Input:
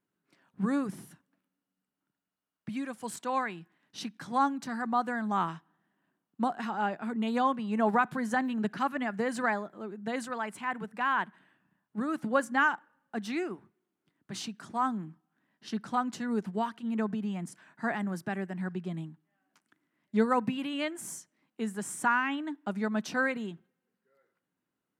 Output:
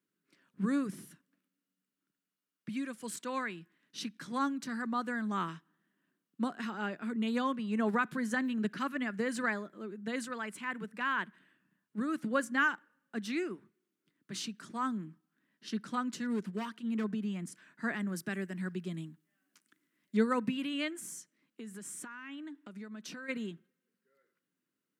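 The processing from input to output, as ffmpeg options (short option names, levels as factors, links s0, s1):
-filter_complex "[0:a]asettb=1/sr,asplit=3[s0][s1][s2];[s0]atrim=end=16.174[s3];[s1]atrim=start=16.17:end=17.04,asetpts=PTS-STARTPTS,afade=t=in:d=0.004:c=qsin,afade=t=out:st=0.866:d=0.004:c=qsin,volume=21.1,asoftclip=hard,volume=0.0473[s4];[s2]atrim=start=17.036[s5];[s3][s4]acrossfade=d=0.004:c1=hsin:c2=qsin[s6];[s6][s5]acrossfade=d=0.004:c1=qsin:c2=hsin,asettb=1/sr,asplit=3[s7][s8][s9];[s7]atrim=end=18.164[s10];[s8]atrim=start=18.16:end=20.17,asetpts=PTS-STARTPTS,afade=t=in:d=0.004:c=qsin,afade=t=out:st=2.006:d=0.004:c=qsin,highshelf=f=4500:g=7.5[s11];[s9]atrim=start=20.166[s12];[s10][s11]acrossfade=d=0.004:c1=hsin:c2=qsin[s13];[s13][s12]acrossfade=d=0.004:c1=qsin:c2=hsin,asplit=3[s14][s15][s16];[s14]afade=t=out:st=20.94:d=0.02[s17];[s15]acompressor=threshold=0.01:ratio=6:attack=3.2:release=140:knee=1:detection=peak,afade=t=in:st=20.94:d=0.02,afade=t=out:st=23.28:d=0.02[s18];[s16]afade=t=in:st=23.28:d=0.02[s19];[s17][s18][s19]amix=inputs=3:normalize=0,highpass=170,equalizer=f=790:w=1.9:g=-14"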